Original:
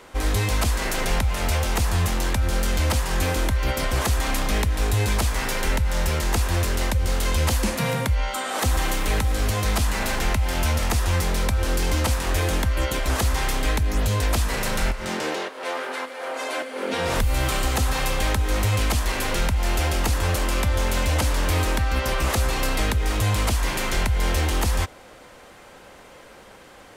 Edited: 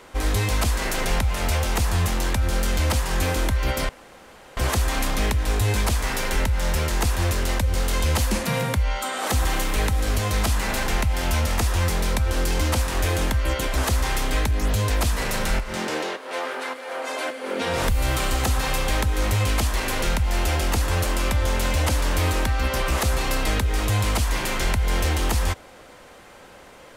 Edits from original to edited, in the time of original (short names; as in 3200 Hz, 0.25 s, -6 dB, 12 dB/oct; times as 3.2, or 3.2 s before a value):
3.89 insert room tone 0.68 s